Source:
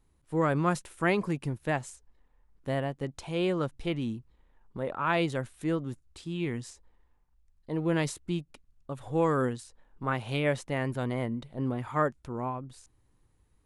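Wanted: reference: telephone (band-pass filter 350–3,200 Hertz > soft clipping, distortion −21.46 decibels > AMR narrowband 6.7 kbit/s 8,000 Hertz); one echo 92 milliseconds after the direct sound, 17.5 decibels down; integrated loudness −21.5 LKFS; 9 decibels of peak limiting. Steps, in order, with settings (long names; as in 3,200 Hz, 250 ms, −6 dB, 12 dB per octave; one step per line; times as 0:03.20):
brickwall limiter −22.5 dBFS
band-pass filter 350–3,200 Hz
single-tap delay 92 ms −17.5 dB
soft clipping −22.5 dBFS
level +17.5 dB
AMR narrowband 6.7 kbit/s 8,000 Hz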